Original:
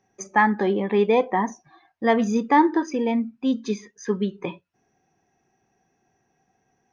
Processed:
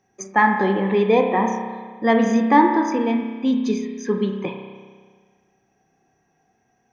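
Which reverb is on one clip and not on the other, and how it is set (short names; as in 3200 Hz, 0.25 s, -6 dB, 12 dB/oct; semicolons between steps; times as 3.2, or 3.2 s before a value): spring tank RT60 1.6 s, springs 31 ms, chirp 65 ms, DRR 3.5 dB; gain +1.5 dB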